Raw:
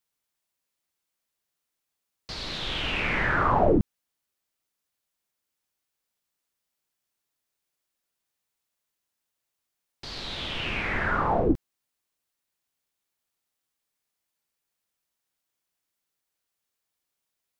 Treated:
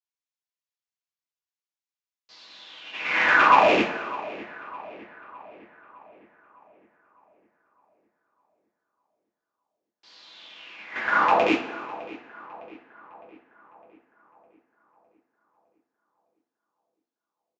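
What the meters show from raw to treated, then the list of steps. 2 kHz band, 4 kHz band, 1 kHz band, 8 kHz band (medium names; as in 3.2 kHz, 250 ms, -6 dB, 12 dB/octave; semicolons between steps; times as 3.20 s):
+6.5 dB, -1.0 dB, +7.0 dB, no reading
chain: rattle on loud lows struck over -26 dBFS, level -18 dBFS; gate -25 dBFS, range -22 dB; high-pass 280 Hz 12 dB/octave; bass shelf 490 Hz -11.5 dB; on a send: filtered feedback delay 608 ms, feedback 56%, low-pass 2.9 kHz, level -17 dB; on the sum: two-slope reverb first 0.33 s, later 1.7 s, from -17 dB, DRR -5 dB; resampled via 16 kHz; trim +3.5 dB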